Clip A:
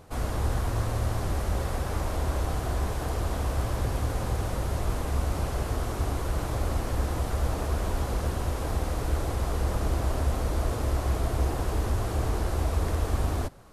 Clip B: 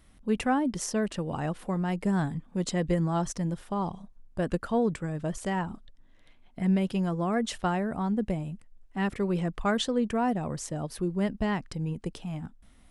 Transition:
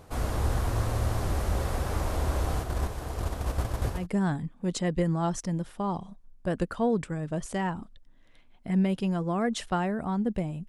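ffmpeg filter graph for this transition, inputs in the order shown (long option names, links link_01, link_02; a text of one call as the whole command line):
ffmpeg -i cue0.wav -i cue1.wav -filter_complex "[0:a]asplit=3[link_01][link_02][link_03];[link_01]afade=type=out:start_time=2.62:duration=0.02[link_04];[link_02]agate=range=-6dB:threshold=-28dB:ratio=16:release=100:detection=peak,afade=type=in:start_time=2.62:duration=0.02,afade=type=out:start_time=4.07:duration=0.02[link_05];[link_03]afade=type=in:start_time=4.07:duration=0.02[link_06];[link_04][link_05][link_06]amix=inputs=3:normalize=0,apad=whole_dur=10.68,atrim=end=10.68,atrim=end=4.07,asetpts=PTS-STARTPTS[link_07];[1:a]atrim=start=1.83:end=8.6,asetpts=PTS-STARTPTS[link_08];[link_07][link_08]acrossfade=duration=0.16:curve1=tri:curve2=tri" out.wav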